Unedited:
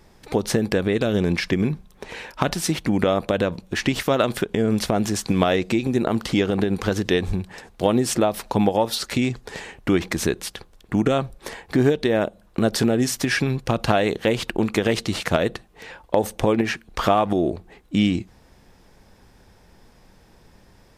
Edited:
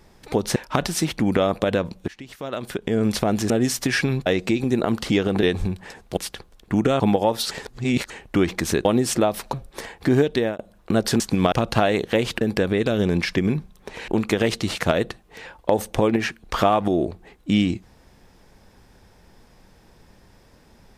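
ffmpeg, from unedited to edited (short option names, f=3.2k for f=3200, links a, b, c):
-filter_complex "[0:a]asplit=17[a][b][c][d][e][f][g][h][i][j][k][l][m][n][o][p][q];[a]atrim=end=0.562[r];[b]atrim=start=2.228:end=3.75,asetpts=PTS-STARTPTS,afade=t=out:st=1.518:d=0.004:c=hsin:silence=0.1[s];[c]atrim=start=3.75:end=5.172,asetpts=PTS-STARTPTS,afade=t=in:d=0.91:c=qua:silence=0.1[t];[d]atrim=start=12.878:end=13.642[u];[e]atrim=start=5.488:end=6.662[v];[f]atrim=start=7.108:end=7.852[w];[g]atrim=start=10.378:end=11.212[x];[h]atrim=start=8.528:end=9.042[y];[i]atrim=start=9.038:end=9.632,asetpts=PTS-STARTPTS,areverse[z];[j]atrim=start=9.628:end=10.382[aa];[k]atrim=start=7.848:end=8.532[ab];[l]atrim=start=11.208:end=12.27,asetpts=PTS-STARTPTS,afade=t=out:st=0.802:d=0.26:c=qsin[ac];[m]atrim=start=12.27:end=12.882,asetpts=PTS-STARTPTS,afade=t=in:d=0.004:c=hsin[ad];[n]atrim=start=5.168:end=5.492[ae];[o]atrim=start=13.638:end=14.532[af];[p]atrim=start=0.558:end=2.232[ag];[q]atrim=start=14.528[ah];[s][t]concat=n=2:v=0:a=1[ai];[r][ai]acrossfade=d=0.004:c1=hsin:c2=hsin[aj];[aj][u]acrossfade=d=0.004:c1=hsin:c2=hsin[ak];[ak][v]acrossfade=d=0.004:c1=hsin:c2=hsin[al];[al][w]acrossfade=d=0.004:c1=hsin:c2=hsin[am];[am][x]acrossfade=d=0.004:c1=hsin:c2=hsin[an];[an][y]acrossfade=d=0.004:c1=hsin:c2=hsin[ao];[ao][z]acrossfade=d=0.004:c1=hsin:c2=hsin[ap];[ap][aa]acrossfade=d=0.004:c1=hsin:c2=hsin[aq];[aq][ab]acrossfade=d=0.004:c1=hsin:c2=hsin[ar];[ac][ad]concat=n=2:v=0:a=1[as];[ar][as]acrossfade=d=0.004:c1=hsin:c2=hsin[at];[at][ae]acrossfade=d=0.004:c1=hsin:c2=hsin[au];[au][af]acrossfade=d=0.004:c1=hsin:c2=hsin[av];[av][ag]acrossfade=d=0.004:c1=hsin:c2=hsin[aw];[aw][ah]acrossfade=d=0.004:c1=hsin:c2=hsin"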